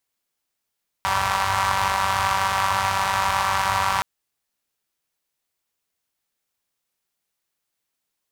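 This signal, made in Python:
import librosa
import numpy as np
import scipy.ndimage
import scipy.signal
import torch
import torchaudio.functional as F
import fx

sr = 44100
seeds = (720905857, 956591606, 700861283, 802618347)

y = fx.engine_four(sr, seeds[0], length_s=2.97, rpm=5800, resonances_hz=(89.0, 1000.0))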